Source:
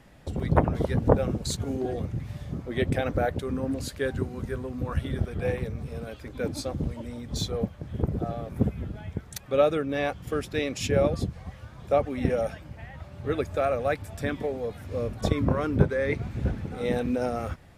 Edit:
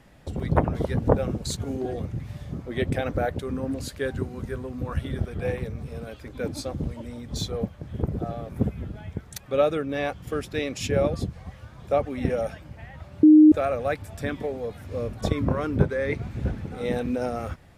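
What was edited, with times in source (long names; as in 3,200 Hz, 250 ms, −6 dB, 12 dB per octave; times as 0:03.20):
0:13.23–0:13.52: beep over 307 Hz −8.5 dBFS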